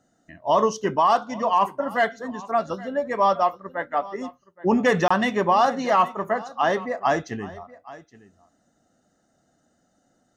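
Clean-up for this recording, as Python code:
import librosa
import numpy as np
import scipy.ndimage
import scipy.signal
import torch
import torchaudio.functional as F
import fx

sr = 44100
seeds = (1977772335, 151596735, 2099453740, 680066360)

y = fx.fix_interpolate(x, sr, at_s=(5.08,), length_ms=25.0)
y = fx.fix_echo_inverse(y, sr, delay_ms=821, level_db=-19.5)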